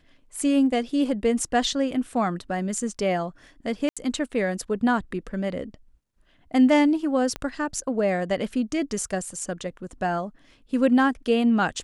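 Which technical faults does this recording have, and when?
3.89–3.97 s: dropout 76 ms
7.36 s: pop -16 dBFS

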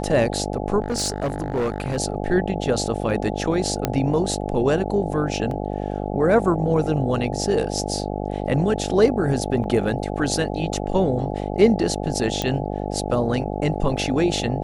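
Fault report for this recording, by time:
buzz 50 Hz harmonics 17 -27 dBFS
0.82–1.98 s: clipped -19 dBFS
3.85 s: pop -6 dBFS
5.51 s: dropout 2.4 ms
9.64 s: dropout 2.4 ms
12.42 s: pop -9 dBFS

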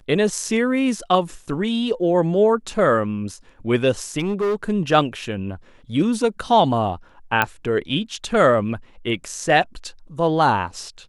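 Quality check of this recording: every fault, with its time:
4.19–4.64 s: clipped -18 dBFS
7.42 s: pop -5 dBFS

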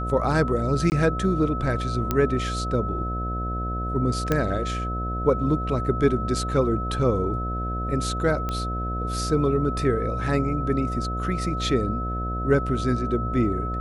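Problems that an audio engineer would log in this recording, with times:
buzz 60 Hz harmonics 12 -29 dBFS
whine 1.3 kHz -30 dBFS
0.90–0.92 s: dropout 19 ms
2.11 s: pop -9 dBFS
4.32 s: pop -9 dBFS
8.49 s: pop -15 dBFS

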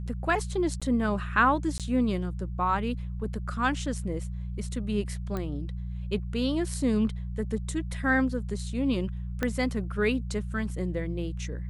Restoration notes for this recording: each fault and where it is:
hum 60 Hz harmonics 3 -34 dBFS
0.80–0.82 s: dropout 16 ms
1.78–1.80 s: dropout 17 ms
5.37 s: pop -20 dBFS
9.43 s: pop -14 dBFS

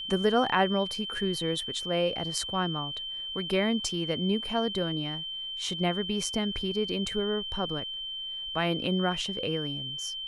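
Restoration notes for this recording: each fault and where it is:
whine 3.1 kHz -34 dBFS

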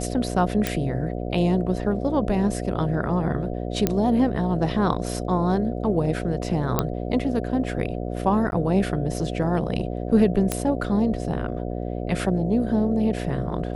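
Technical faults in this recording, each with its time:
buzz 60 Hz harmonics 12 -29 dBFS
0.67 s: pop
3.87 s: pop -6 dBFS
6.79 s: pop -6 dBFS
8.51–8.52 s: dropout 11 ms
10.52 s: pop -8 dBFS

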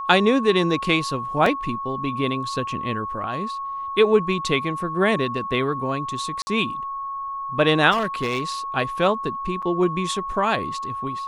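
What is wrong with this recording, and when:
whine 1.1 kHz -27 dBFS
1.46 s: dropout 2.8 ms
6.42–6.47 s: dropout 50 ms
7.91–8.43 s: clipped -18.5 dBFS
9.62–9.63 s: dropout 6 ms

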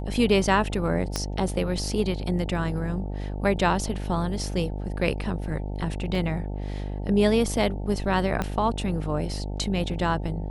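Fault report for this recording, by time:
buzz 50 Hz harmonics 18 -31 dBFS
1.16 s: pop -12 dBFS
6.15 s: dropout 2.7 ms
8.42 s: pop -13 dBFS

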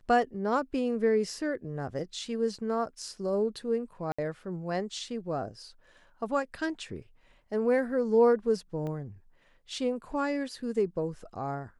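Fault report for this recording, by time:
4.12–4.18 s: dropout 65 ms
8.87 s: pop -27 dBFS

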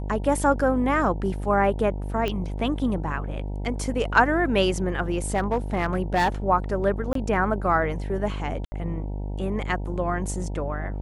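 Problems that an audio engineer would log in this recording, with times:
buzz 50 Hz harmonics 19 -30 dBFS
2.28 s: pop -14 dBFS
5.34–6.29 s: clipped -16.5 dBFS
7.13–7.15 s: dropout 23 ms
8.65–8.72 s: dropout 70 ms

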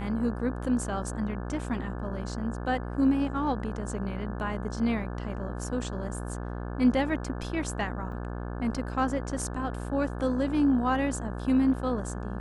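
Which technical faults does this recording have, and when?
buzz 60 Hz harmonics 29 -35 dBFS
8.12 s: dropout 3.3 ms

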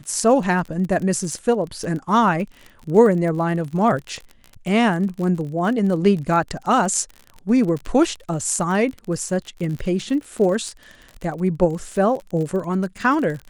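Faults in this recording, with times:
crackle 44 per s -28 dBFS

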